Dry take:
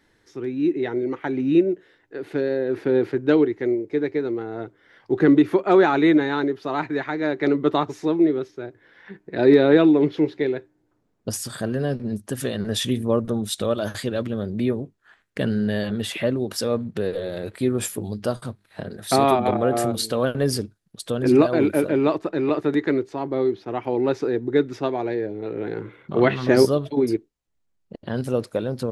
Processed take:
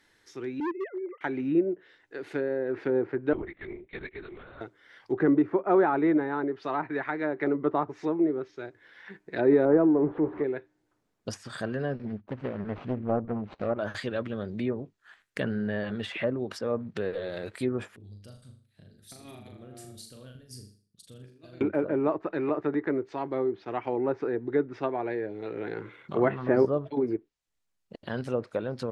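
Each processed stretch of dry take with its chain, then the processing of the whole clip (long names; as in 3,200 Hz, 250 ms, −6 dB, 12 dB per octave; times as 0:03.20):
0:00.60–0:01.21: three sine waves on the formant tracks + hard clipping −21.5 dBFS
0:03.33–0:04.61: high-pass filter 230 Hz + parametric band 520 Hz −14 dB 2.3 octaves + linear-prediction vocoder at 8 kHz whisper
0:09.65–0:10.44: converter with a step at zero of −28.5 dBFS + low-pass filter 1,200 Hz
0:12.05–0:13.79: running median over 25 samples + low-pass filter 2,000 Hz + highs frequency-modulated by the lows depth 0.59 ms
0:17.96–0:21.61: guitar amp tone stack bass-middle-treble 10-0-1 + compressor whose output falls as the input rises −41 dBFS, ratio −0.5 + flutter between parallel walls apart 6.8 metres, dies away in 0.43 s
whole clip: tilt shelving filter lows −5 dB, about 790 Hz; treble cut that deepens with the level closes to 1,100 Hz, closed at −20 dBFS; dynamic equaliser 3,600 Hz, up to −4 dB, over −50 dBFS, Q 1.3; level −3.5 dB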